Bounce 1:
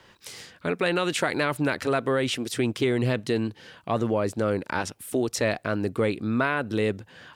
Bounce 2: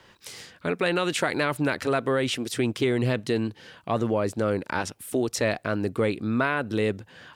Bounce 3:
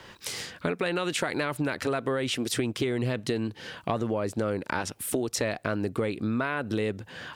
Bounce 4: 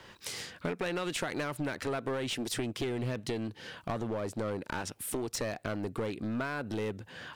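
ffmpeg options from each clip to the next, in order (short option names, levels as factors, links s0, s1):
-af anull
-af "acompressor=threshold=0.0251:ratio=6,volume=2.11"
-af "aeval=exprs='clip(val(0),-1,0.0473)':c=same,volume=0.596"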